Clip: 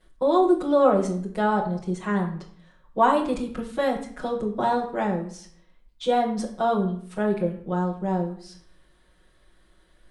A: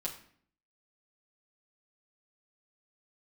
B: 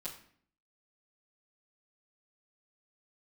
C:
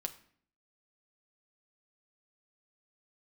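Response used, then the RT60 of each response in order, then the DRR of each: B; 0.55, 0.55, 0.55 seconds; −4.0, −10.5, 5.0 decibels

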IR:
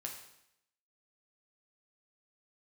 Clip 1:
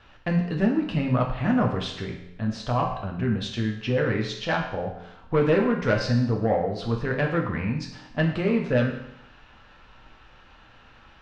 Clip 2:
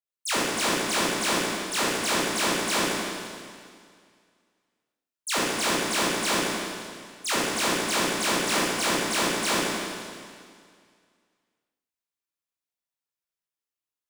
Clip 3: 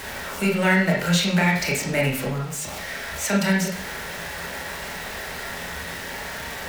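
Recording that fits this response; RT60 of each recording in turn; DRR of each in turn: 1; 0.80, 2.1, 0.55 seconds; 0.5, −10.0, −2.5 decibels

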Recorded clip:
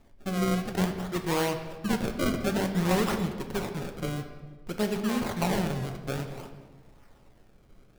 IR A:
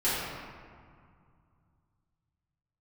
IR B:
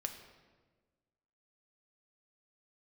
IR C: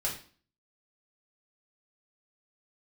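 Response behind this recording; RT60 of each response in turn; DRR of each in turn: B; 2.1, 1.4, 0.40 seconds; −13.0, 4.5, −4.5 decibels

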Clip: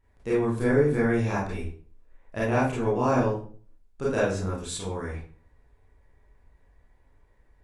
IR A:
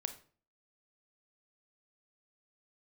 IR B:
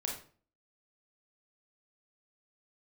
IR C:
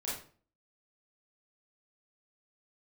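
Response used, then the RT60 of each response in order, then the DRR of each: C; 0.45, 0.45, 0.45 seconds; 8.5, −1.0, −8.0 decibels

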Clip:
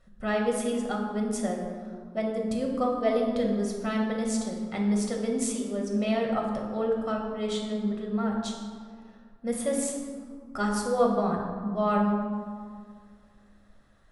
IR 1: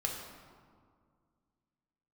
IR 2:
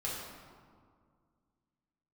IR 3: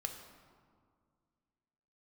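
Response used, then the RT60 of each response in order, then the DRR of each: 1; 2.0, 2.0, 2.0 seconds; −0.5, −6.5, 4.0 decibels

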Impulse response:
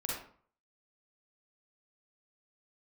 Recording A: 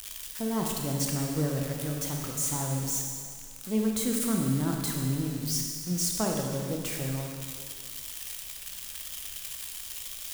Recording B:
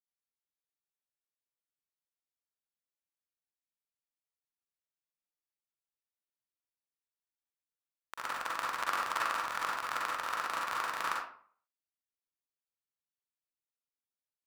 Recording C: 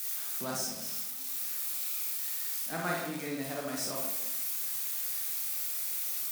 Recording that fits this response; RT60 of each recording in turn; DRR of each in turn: B; 2.0, 0.50, 0.95 seconds; 0.5, −4.5, −3.0 decibels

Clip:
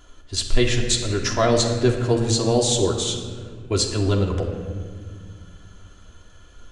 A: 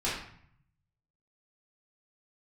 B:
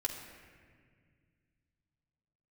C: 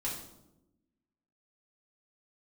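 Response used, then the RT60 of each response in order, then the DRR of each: B; 0.60, 1.9, 0.95 seconds; −9.0, −1.0, −6.0 decibels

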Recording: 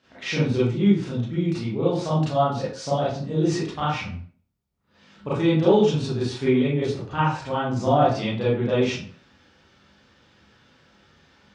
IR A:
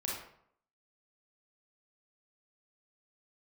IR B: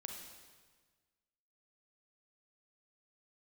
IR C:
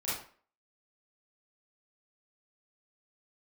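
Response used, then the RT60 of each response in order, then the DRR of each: C; 0.65, 1.5, 0.45 seconds; −4.0, 2.0, −10.5 decibels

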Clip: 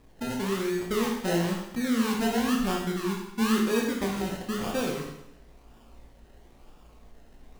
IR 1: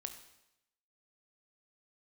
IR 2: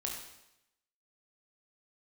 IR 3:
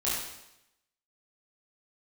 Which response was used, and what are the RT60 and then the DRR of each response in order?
2; 0.85, 0.85, 0.85 seconds; 6.5, −1.0, −9.0 decibels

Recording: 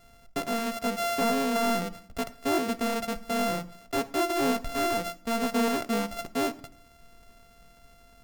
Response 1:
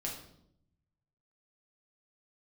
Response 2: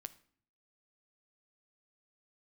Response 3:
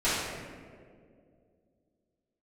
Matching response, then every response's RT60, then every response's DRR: 2; 0.75, 0.55, 2.2 seconds; −2.0, 12.5, −14.0 decibels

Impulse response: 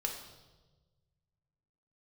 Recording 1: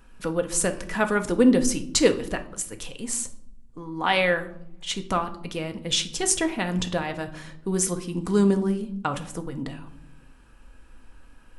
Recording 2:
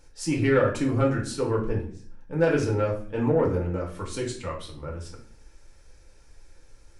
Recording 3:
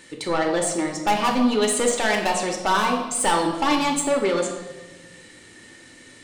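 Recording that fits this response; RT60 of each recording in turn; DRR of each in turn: 3; 0.80, 0.50, 1.2 seconds; 6.5, −2.0, 1.0 decibels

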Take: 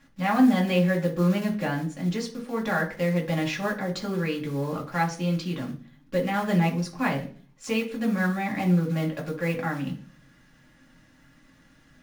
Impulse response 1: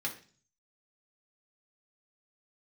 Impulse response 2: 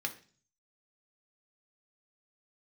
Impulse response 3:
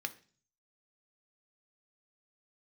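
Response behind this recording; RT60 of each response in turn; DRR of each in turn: 1; 0.40, 0.40, 0.40 seconds; −1.5, 3.0, 7.5 decibels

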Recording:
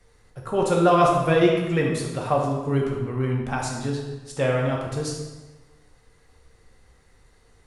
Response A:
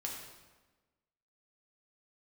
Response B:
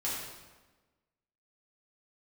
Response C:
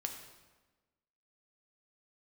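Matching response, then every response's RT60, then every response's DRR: A; 1.2, 1.2, 1.2 seconds; −2.0, −8.0, 3.5 decibels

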